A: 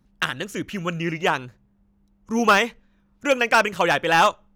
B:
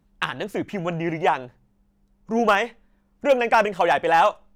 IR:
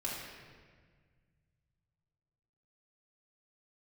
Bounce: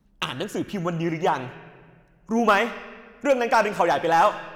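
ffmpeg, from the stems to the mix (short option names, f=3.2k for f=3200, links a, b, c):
-filter_complex "[0:a]bandreject=f=50:t=h:w=6,bandreject=f=100:t=h:w=6,bandreject=f=150:t=h:w=6,bandreject=f=200:t=h:w=6,volume=-3.5dB,asplit=2[a][b];[b]volume=-13dB[c];[1:a]volume=-4.5dB,asplit=2[d][e];[e]apad=whole_len=200805[f];[a][f]sidechaincompress=threshold=-31dB:ratio=3:attack=42:release=109[g];[2:a]atrim=start_sample=2205[h];[c][h]afir=irnorm=-1:irlink=0[i];[g][d][i]amix=inputs=3:normalize=0"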